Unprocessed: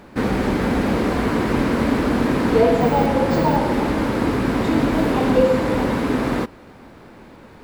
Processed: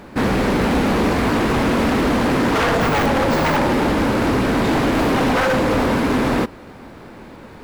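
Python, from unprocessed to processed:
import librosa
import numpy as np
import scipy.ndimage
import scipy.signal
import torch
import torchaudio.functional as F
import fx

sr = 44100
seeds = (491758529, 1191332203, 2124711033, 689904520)

y = 10.0 ** (-16.5 / 20.0) * (np.abs((x / 10.0 ** (-16.5 / 20.0) + 3.0) % 4.0 - 2.0) - 1.0)
y = y * librosa.db_to_amplitude(4.5)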